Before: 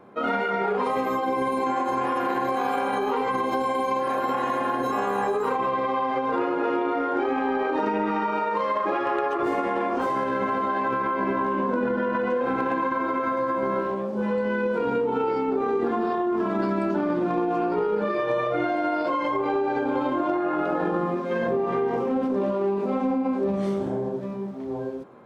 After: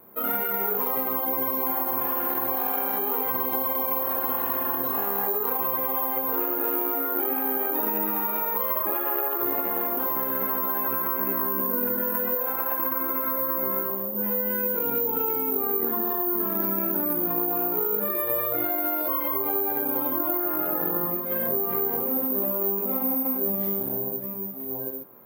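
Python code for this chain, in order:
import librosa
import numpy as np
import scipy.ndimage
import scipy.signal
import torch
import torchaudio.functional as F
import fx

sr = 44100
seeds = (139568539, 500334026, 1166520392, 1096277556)

y = fx.low_shelf_res(x, sr, hz=450.0, db=-7.5, q=1.5, at=(12.35, 12.79))
y = (np.kron(y[::3], np.eye(3)[0]) * 3)[:len(y)]
y = y * librosa.db_to_amplitude(-6.0)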